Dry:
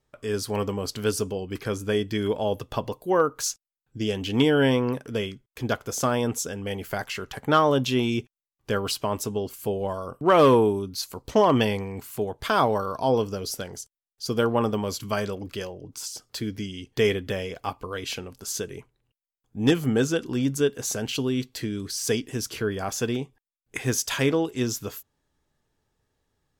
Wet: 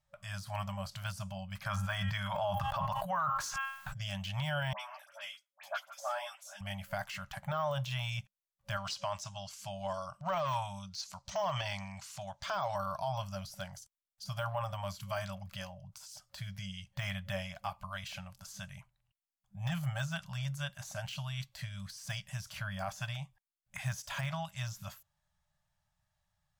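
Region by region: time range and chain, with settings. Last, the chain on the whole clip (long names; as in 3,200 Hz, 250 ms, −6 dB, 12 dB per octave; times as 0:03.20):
0:01.66–0:04.01: parametric band 1,200 Hz +9.5 dB 1.4 octaves + hum removal 270 Hz, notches 12 + level that may fall only so fast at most 32 dB per second
0:04.73–0:06.61: high-pass filter 500 Hz 24 dB per octave + all-pass dispersion highs, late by 69 ms, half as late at 2,000 Hz + string-ensemble chorus
0:08.77–0:12.76: low-pass with resonance 6,000 Hz, resonance Q 2.2 + spectral tilt +1.5 dB per octave
whole clip: brick-wall band-stop 200–550 Hz; de-essing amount 90%; brickwall limiter −20 dBFS; level −5.5 dB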